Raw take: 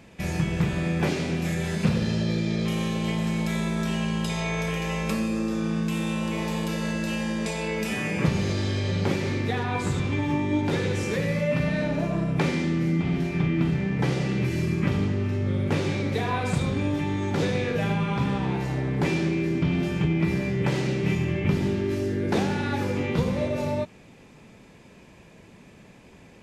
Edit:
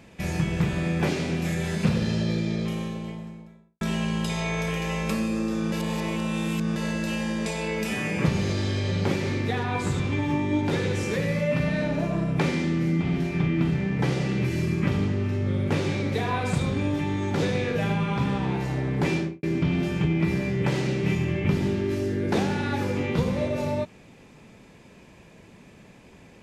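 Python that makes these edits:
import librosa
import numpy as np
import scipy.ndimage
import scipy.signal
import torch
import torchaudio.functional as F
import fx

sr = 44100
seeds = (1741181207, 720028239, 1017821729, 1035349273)

y = fx.studio_fade_out(x, sr, start_s=2.19, length_s=1.62)
y = fx.studio_fade_out(y, sr, start_s=19.14, length_s=0.29)
y = fx.edit(y, sr, fx.reverse_span(start_s=5.72, length_s=1.04), tone=tone)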